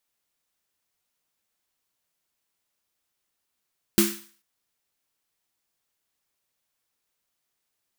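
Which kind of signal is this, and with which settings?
snare drum length 0.44 s, tones 210 Hz, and 340 Hz, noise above 1.1 kHz, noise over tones -3 dB, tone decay 0.35 s, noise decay 0.47 s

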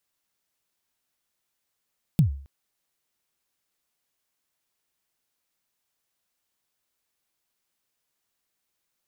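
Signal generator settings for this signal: kick drum length 0.27 s, from 180 Hz, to 69 Hz, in 111 ms, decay 0.47 s, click on, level -11.5 dB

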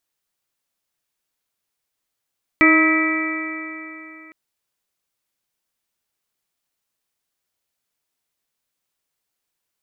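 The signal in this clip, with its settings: stretched partials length 1.71 s, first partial 315 Hz, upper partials -11/-17.5/-5/-19.5/-1/-1.5 dB, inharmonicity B 0.0021, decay 3.16 s, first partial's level -13 dB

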